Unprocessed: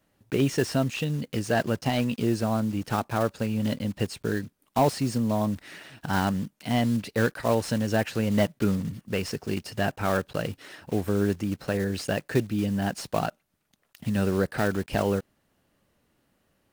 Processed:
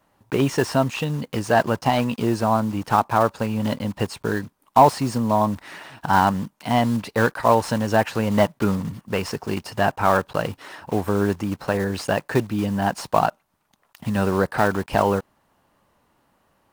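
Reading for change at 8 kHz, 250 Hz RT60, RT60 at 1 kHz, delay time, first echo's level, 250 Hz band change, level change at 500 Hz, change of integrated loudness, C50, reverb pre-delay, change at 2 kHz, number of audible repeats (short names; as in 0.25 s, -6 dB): +2.5 dB, none, none, none, none, +3.0 dB, +5.5 dB, +5.5 dB, none, none, +5.5 dB, none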